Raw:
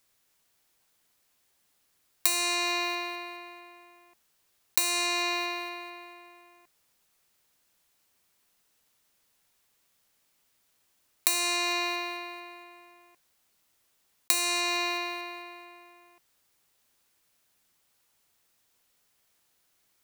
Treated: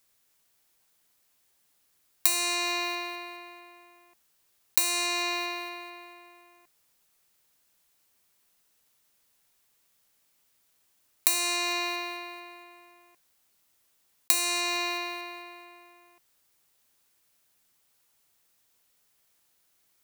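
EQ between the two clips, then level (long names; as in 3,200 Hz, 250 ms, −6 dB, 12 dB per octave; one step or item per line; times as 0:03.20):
high-shelf EQ 7,600 Hz +4 dB
−1.0 dB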